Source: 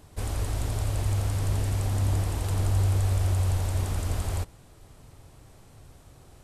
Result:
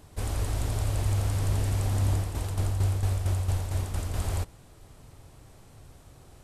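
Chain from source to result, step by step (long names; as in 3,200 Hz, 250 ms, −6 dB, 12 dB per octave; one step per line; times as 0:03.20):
0:02.12–0:04.14: shaped tremolo saw down 4.4 Hz, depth 60%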